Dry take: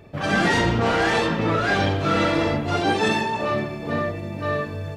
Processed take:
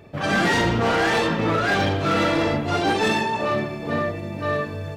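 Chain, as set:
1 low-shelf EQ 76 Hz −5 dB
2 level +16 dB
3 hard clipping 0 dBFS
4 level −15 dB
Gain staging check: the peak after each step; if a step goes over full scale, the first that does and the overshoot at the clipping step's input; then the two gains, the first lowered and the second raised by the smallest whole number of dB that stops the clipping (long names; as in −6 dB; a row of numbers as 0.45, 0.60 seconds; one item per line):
−9.0, +7.0, 0.0, −15.0 dBFS
step 2, 7.0 dB
step 2 +9 dB, step 4 −8 dB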